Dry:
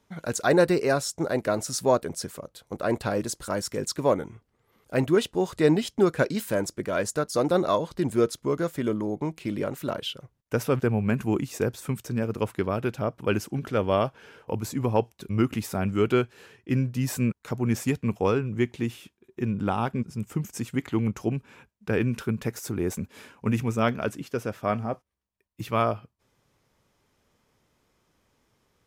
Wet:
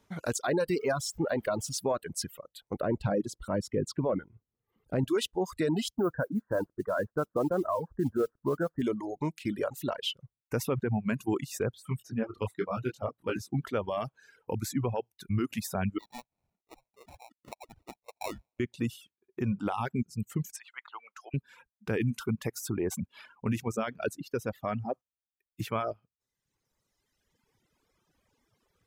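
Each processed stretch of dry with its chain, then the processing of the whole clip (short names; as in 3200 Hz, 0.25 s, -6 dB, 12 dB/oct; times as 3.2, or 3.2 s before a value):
0.78–1.79 zero-crossing step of -38 dBFS + high shelf 3700 Hz -6.5 dB
2.8–5.08 HPF 160 Hz 6 dB/oct + tilt -4 dB/oct
5.96–8.82 steep low-pass 1700 Hz 72 dB/oct + modulation noise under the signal 29 dB
11.74–13.53 high shelf 7000 Hz -6 dB + detuned doubles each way 25 cents
15.98–18.6 Chebyshev high-pass 650 Hz, order 6 + tape spacing loss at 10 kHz 42 dB + sample-rate reducer 1600 Hz
20.56–21.34 HPF 970 Hz 24 dB/oct + tilt -4 dB/oct + upward compressor, threshold -46 dBFS
whole clip: reverb removal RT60 1.9 s; limiter -20 dBFS; reverb removal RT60 0.67 s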